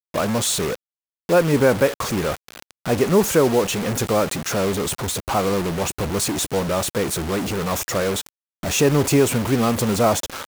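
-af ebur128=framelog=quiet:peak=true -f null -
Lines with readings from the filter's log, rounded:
Integrated loudness:
  I:         -20.5 LUFS
  Threshold: -30.8 LUFS
Loudness range:
  LRA:         2.8 LU
  Threshold: -41.2 LUFS
  LRA low:   -22.8 LUFS
  LRA high:  -19.9 LUFS
True peak:
  Peak:       -4.8 dBFS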